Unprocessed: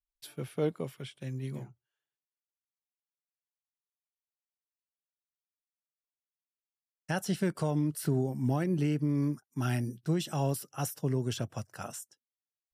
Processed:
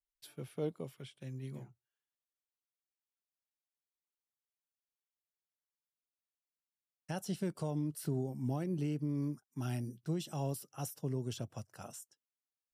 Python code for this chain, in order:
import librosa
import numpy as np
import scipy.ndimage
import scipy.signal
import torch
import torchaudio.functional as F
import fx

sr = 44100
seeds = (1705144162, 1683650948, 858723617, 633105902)

y = fx.dynamic_eq(x, sr, hz=1700.0, q=1.4, threshold_db=-54.0, ratio=4.0, max_db=-7)
y = y * 10.0 ** (-6.5 / 20.0)